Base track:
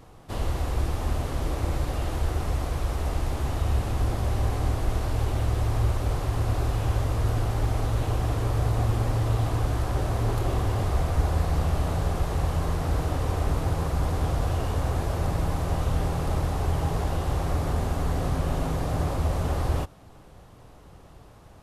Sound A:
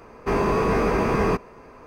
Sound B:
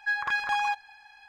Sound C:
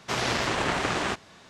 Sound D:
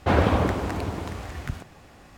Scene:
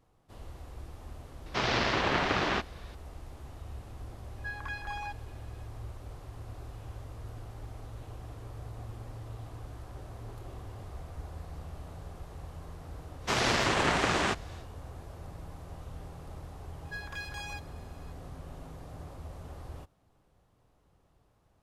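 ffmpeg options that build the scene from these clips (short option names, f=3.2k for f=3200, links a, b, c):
-filter_complex "[3:a]asplit=2[a][b];[2:a]asplit=2[c][d];[0:a]volume=-18.5dB[e];[a]lowpass=f=5.3k:w=0.5412,lowpass=f=5.3k:w=1.3066[f];[d]aderivative[g];[f]atrim=end=1.49,asetpts=PTS-STARTPTS,volume=-1.5dB,afade=t=in:d=0.004:c=hsin,afade=t=out:st=1.486:d=0.004:c=hsin,adelay=1460[h];[c]atrim=end=1.28,asetpts=PTS-STARTPTS,volume=-12dB,afade=t=in:d=0.004:c=hsin,afade=t=out:st=1.276:d=0.004:c=hsin,adelay=4380[i];[b]atrim=end=1.49,asetpts=PTS-STARTPTS,volume=-0.5dB,afade=t=in:d=0.1,afade=t=out:st=1.39:d=0.1,adelay=13190[j];[g]atrim=end=1.28,asetpts=PTS-STARTPTS,volume=-1.5dB,afade=t=in:d=0.004:c=hsin,afade=t=out:st=1.276:d=0.004:c=hsin,adelay=16850[k];[e][h][i][j][k]amix=inputs=5:normalize=0"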